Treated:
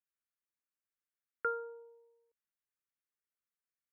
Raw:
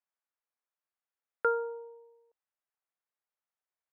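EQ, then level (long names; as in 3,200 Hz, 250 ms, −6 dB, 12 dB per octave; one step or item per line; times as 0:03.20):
phaser with its sweep stopped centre 1,800 Hz, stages 4
−3.5 dB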